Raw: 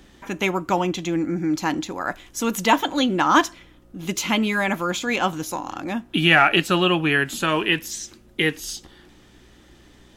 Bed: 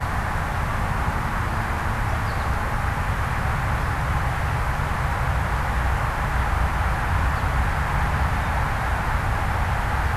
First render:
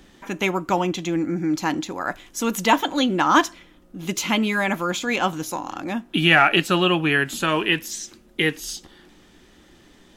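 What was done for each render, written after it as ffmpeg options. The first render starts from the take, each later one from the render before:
-af "bandreject=f=60:t=h:w=4,bandreject=f=120:t=h:w=4"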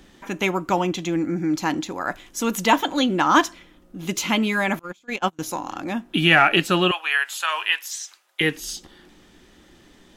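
-filter_complex "[0:a]asettb=1/sr,asplit=3[a][b][c];[a]atrim=end=4.794[d];[b]atrim=start=4.79:end=5.39,asetpts=PTS-STARTPTS,afade=t=in:d=0.004:c=qsin,afade=t=out:st=0.596:d=0.004:c=qsin,agate=range=-30dB:threshold=-22dB:ratio=16:release=100:detection=peak[e];[c]atrim=start=5.386[f];[d][e]acrossfade=d=0.004:c1=hsin:c2=qsin[g];[g][f]acrossfade=d=0.004:c1=qsin:c2=hsin,asettb=1/sr,asplit=3[h][i][j];[h]atrim=end=6.914[k];[i]atrim=start=6.91:end=8.41,asetpts=PTS-STARTPTS,afade=t=in:d=0.004:c=qsin,afade=t=out:st=1.496:d=0.004:c=qsin,highpass=f=800:w=0.5412,highpass=f=800:w=1.3066[l];[j]atrim=start=8.406[m];[k][l]acrossfade=d=0.004:c1=hsin:c2=qsin[n];[n][m]acrossfade=d=0.004:c1=qsin:c2=hsin"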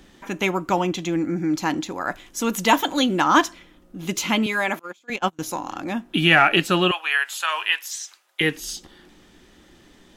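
-filter_complex "[0:a]asettb=1/sr,asplit=3[a][b][c];[a]atrim=end=2.664[d];[b]atrim=start=2.66:end=3.24,asetpts=PTS-STARTPTS,afade=t=in:d=0.004:c=qsin,afade=t=out:st=0.576:d=0.004:c=qsin,highshelf=f=6.7k:g=8[e];[c]atrim=start=3.236[f];[d][e]acrossfade=d=0.004:c1=hsin:c2=qsin[g];[g][f]acrossfade=d=0.004:c1=qsin:c2=hsin,asettb=1/sr,asplit=3[h][i][j];[h]atrim=end=4.464[k];[i]atrim=start=4.46:end=5.1,asetpts=PTS-STARTPTS,afade=t=in:d=0.004:c=qsin,afade=t=out:st=0.636:d=0.004:c=qsin,highpass=300[l];[j]atrim=start=5.096[m];[k][l]acrossfade=d=0.004:c1=hsin:c2=qsin[n];[n][m]acrossfade=d=0.004:c1=qsin:c2=hsin"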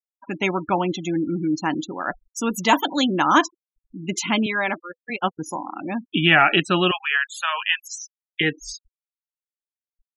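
-af "afftfilt=real='re*gte(hypot(re,im),0.0447)':imag='im*gte(hypot(re,im),0.0447)':win_size=1024:overlap=0.75,bandreject=f=500:w=12"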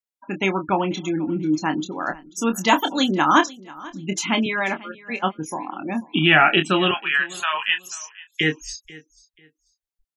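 -filter_complex "[0:a]asplit=2[a][b];[b]adelay=26,volume=-8dB[c];[a][c]amix=inputs=2:normalize=0,aecho=1:1:489|978:0.0891|0.0214"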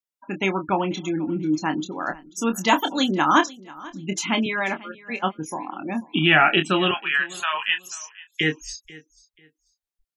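-af "volume=-1.5dB"

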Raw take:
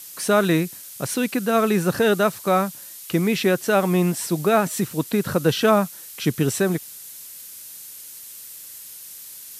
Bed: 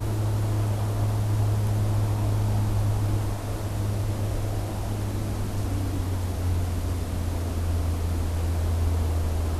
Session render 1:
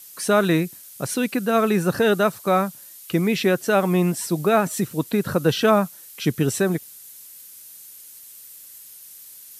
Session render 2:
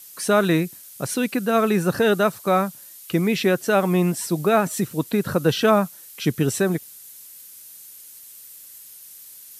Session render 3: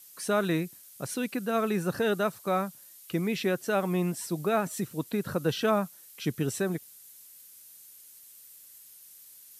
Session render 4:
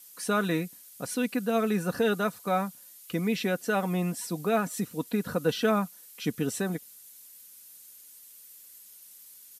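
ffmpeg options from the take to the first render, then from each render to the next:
-af "afftdn=nr=6:nf=-40"
-af anull
-af "volume=-8.5dB"
-af "aecho=1:1:4.1:0.46"

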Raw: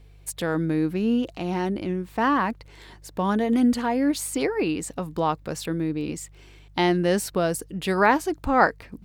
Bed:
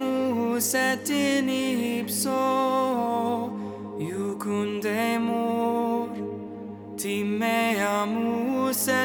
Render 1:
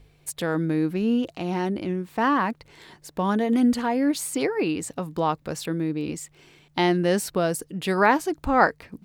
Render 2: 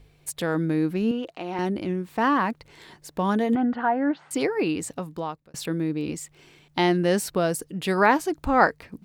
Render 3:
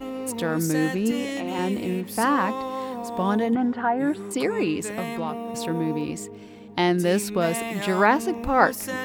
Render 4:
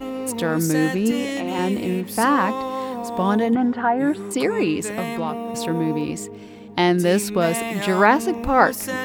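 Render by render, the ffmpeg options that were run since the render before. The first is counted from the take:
-af "bandreject=f=50:t=h:w=4,bandreject=f=100:t=h:w=4"
-filter_complex "[0:a]asettb=1/sr,asplit=3[a][b][c];[a]atrim=end=1.114[d];[b]atrim=start=1.11:end=1.59,asetpts=PTS-STARTPTS,afade=t=in:d=0.004:c=qsin,afade=t=out:st=0.476:d=0.004:c=qsin,bass=f=250:g=-14,treble=f=4k:g=-9[e];[c]atrim=start=1.586[f];[d][e]acrossfade=d=0.004:c1=hsin:c2=qsin[g];[g][f]acrossfade=d=0.004:c1=qsin:c2=hsin,asettb=1/sr,asplit=3[h][i][j];[h]atrim=end=3.554[k];[i]atrim=start=3.55:end=4.31,asetpts=PTS-STARTPTS,afade=t=in:d=0.004:c=qsin,afade=t=out:st=0.756:d=0.004:c=qsin,highpass=160,equalizer=f=240:t=q:w=4:g=-4,equalizer=f=460:t=q:w=4:g=-5,equalizer=f=780:t=q:w=4:g=9,equalizer=f=1.5k:t=q:w=4:g=7,equalizer=f=2.3k:t=q:w=4:g=-9,lowpass=f=2.5k:w=0.5412,lowpass=f=2.5k:w=1.3066[l];[j]atrim=start=4.306[m];[k][l]acrossfade=d=0.004:c1=hsin:c2=qsin[n];[n][m]acrossfade=d=0.004:c1=qsin:c2=hsin,asplit=2[o][p];[o]atrim=end=5.54,asetpts=PTS-STARTPTS,afade=t=out:st=4.87:d=0.67[q];[p]atrim=start=5.54,asetpts=PTS-STARTPTS,afade=t=in:d=0.004:c=hsin[r];[q][r]concat=n=2:v=0:a=1"
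-filter_complex "[1:a]volume=-7dB[a];[0:a][a]amix=inputs=2:normalize=0"
-af "volume=3.5dB,alimiter=limit=-2dB:level=0:latency=1"

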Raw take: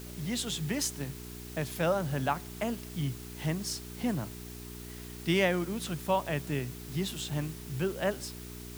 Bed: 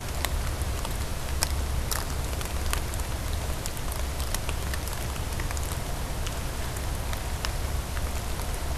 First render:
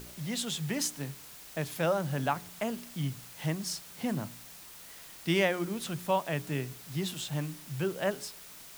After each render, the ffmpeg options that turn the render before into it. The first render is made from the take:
-af "bandreject=f=60:t=h:w=4,bandreject=f=120:t=h:w=4,bandreject=f=180:t=h:w=4,bandreject=f=240:t=h:w=4,bandreject=f=300:t=h:w=4,bandreject=f=360:t=h:w=4,bandreject=f=420:t=h:w=4"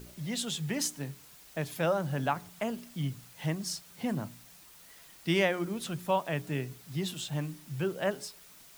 -af "afftdn=nr=6:nf=-50"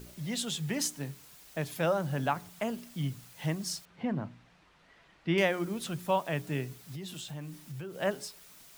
-filter_complex "[0:a]asettb=1/sr,asplit=3[a][b][c];[a]atrim=end=3.854[d];[b]atrim=start=3.85:end=5.38,asetpts=PTS-STARTPTS,afade=t=in:d=0.004:c=qsin,afade=t=out:st=1.526:d=0.004:c=qsin,lowpass=2.4k[e];[c]atrim=start=5.376[f];[d][e]acrossfade=d=0.004:c1=hsin:c2=qsin[g];[g][f]acrossfade=d=0.004:c1=qsin:c2=hsin,asettb=1/sr,asplit=3[h][i][j];[h]atrim=end=6.784[k];[i]atrim=start=6.78:end=8,asetpts=PTS-STARTPTS,afade=t=in:d=0.004:c=qsin,afade=t=out:st=1.216:d=0.004:c=qsin,acompressor=threshold=-38dB:ratio=5:attack=3.2:release=140:knee=1:detection=peak[l];[j]atrim=start=7.996[m];[k][l]acrossfade=d=0.004:c1=hsin:c2=qsin[n];[n][m]acrossfade=d=0.004:c1=qsin:c2=hsin"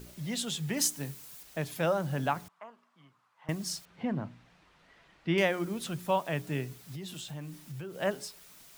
-filter_complex "[0:a]asettb=1/sr,asplit=3[a][b][c];[a]atrim=end=0.774[d];[b]atrim=start=0.77:end=1.43,asetpts=PTS-STARTPTS,afade=t=in:d=0.004:c=qsin,afade=t=out:st=0.656:d=0.004:c=qsin,highshelf=f=6k:g=7.5[e];[c]atrim=start=1.426[f];[d][e]acrossfade=d=0.004:c1=hsin:c2=qsin[g];[g][f]acrossfade=d=0.004:c1=qsin:c2=hsin,asettb=1/sr,asplit=3[h][i][j];[h]atrim=end=2.484[k];[i]atrim=start=2.48:end=3.49,asetpts=PTS-STARTPTS,afade=t=in:d=0.004:c=qsin,afade=t=out:st=1.006:d=0.004:c=qsin,bandpass=f=1.1k:t=q:w=4.3[l];[j]atrim=start=3.486[m];[k][l]acrossfade=d=0.004:c1=hsin:c2=qsin[n];[n][m]acrossfade=d=0.004:c1=qsin:c2=hsin"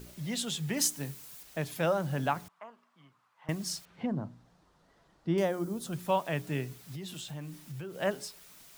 -filter_complex "[0:a]asettb=1/sr,asplit=3[a][b][c];[a]atrim=end=4.064[d];[b]atrim=start=4.06:end=5.93,asetpts=PTS-STARTPTS,afade=t=in:d=0.004:c=qsin,afade=t=out:st=1.866:d=0.004:c=qsin,equalizer=f=2.4k:w=1.1:g=-14.5[e];[c]atrim=start=5.926[f];[d][e]acrossfade=d=0.004:c1=hsin:c2=qsin[g];[g][f]acrossfade=d=0.004:c1=qsin:c2=hsin"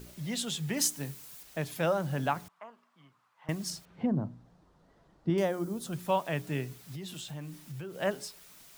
-filter_complex "[0:a]asettb=1/sr,asplit=3[a][b][c];[a]atrim=end=3.704[d];[b]atrim=start=3.7:end=5.3,asetpts=PTS-STARTPTS,afade=t=in:d=0.004:c=qsin,afade=t=out:st=1.596:d=0.004:c=qsin,tiltshelf=f=910:g=4.5[e];[c]atrim=start=5.296[f];[d][e]acrossfade=d=0.004:c1=hsin:c2=qsin[g];[g][f]acrossfade=d=0.004:c1=qsin:c2=hsin"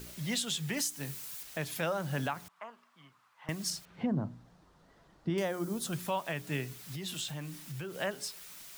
-filter_complex "[0:a]acrossover=split=1100[a][b];[b]acontrast=34[c];[a][c]amix=inputs=2:normalize=0,alimiter=limit=-22.5dB:level=0:latency=1:release=291"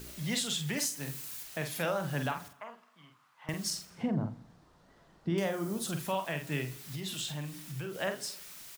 -filter_complex "[0:a]asplit=2[a][b];[b]adelay=47,volume=-6.5dB[c];[a][c]amix=inputs=2:normalize=0,aecho=1:1:83|166|249|332:0.0891|0.049|0.027|0.0148"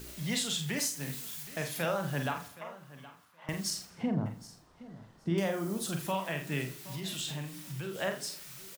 -filter_complex "[0:a]asplit=2[a][b];[b]adelay=36,volume=-11dB[c];[a][c]amix=inputs=2:normalize=0,aecho=1:1:770|1540:0.126|0.0201"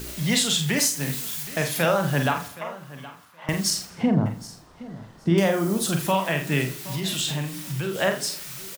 -af "volume=10.5dB"

